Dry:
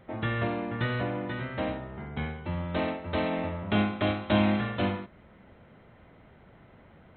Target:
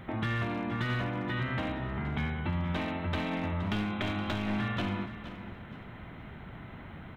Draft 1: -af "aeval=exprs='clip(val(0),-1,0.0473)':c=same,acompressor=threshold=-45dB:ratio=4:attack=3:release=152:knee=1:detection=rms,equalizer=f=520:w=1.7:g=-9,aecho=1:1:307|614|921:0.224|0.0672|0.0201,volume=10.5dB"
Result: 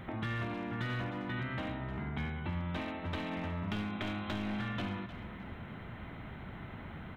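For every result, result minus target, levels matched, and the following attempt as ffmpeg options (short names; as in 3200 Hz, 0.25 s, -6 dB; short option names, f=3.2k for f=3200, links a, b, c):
echo 0.164 s early; compressor: peak gain reduction +5 dB
-af "aeval=exprs='clip(val(0),-1,0.0473)':c=same,acompressor=threshold=-45dB:ratio=4:attack=3:release=152:knee=1:detection=rms,equalizer=f=520:w=1.7:g=-9,aecho=1:1:471|942|1413:0.224|0.0672|0.0201,volume=10.5dB"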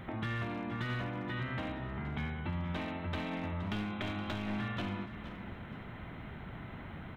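compressor: peak gain reduction +5 dB
-af "aeval=exprs='clip(val(0),-1,0.0473)':c=same,acompressor=threshold=-38.5dB:ratio=4:attack=3:release=152:knee=1:detection=rms,equalizer=f=520:w=1.7:g=-9,aecho=1:1:471|942|1413:0.224|0.0672|0.0201,volume=10.5dB"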